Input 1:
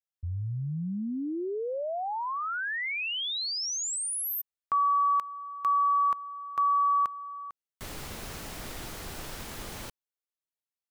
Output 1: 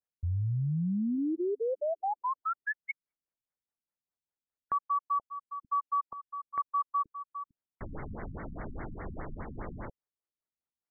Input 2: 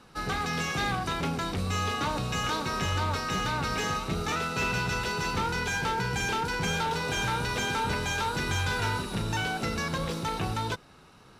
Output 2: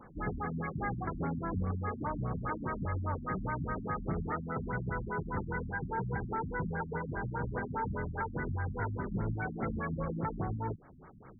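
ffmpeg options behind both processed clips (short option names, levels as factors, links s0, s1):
-af "acompressor=threshold=0.0398:ratio=6:attack=0.64:release=459:knee=1:detection=rms,afftfilt=real='re*lt(b*sr/1024,270*pow(2300/270,0.5+0.5*sin(2*PI*4.9*pts/sr)))':imag='im*lt(b*sr/1024,270*pow(2300/270,0.5+0.5*sin(2*PI*4.9*pts/sr)))':win_size=1024:overlap=0.75,volume=1.33"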